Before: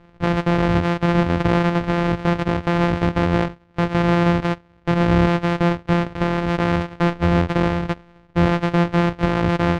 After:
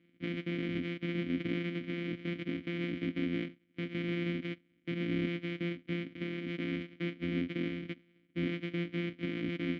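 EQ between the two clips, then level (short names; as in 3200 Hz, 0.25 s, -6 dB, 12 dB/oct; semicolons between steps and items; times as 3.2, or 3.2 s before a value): vowel filter i; HPF 56 Hz; -1.5 dB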